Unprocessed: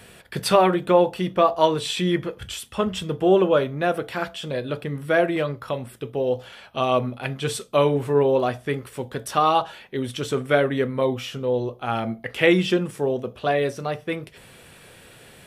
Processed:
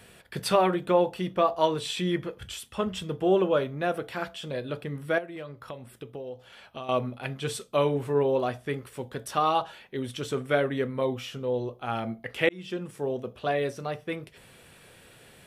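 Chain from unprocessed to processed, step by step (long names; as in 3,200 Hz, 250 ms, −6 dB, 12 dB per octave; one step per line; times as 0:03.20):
0:05.18–0:06.89: downward compressor 4 to 1, threshold −32 dBFS, peak gain reduction 14 dB
0:12.49–0:13.36: fade in equal-power
level −5.5 dB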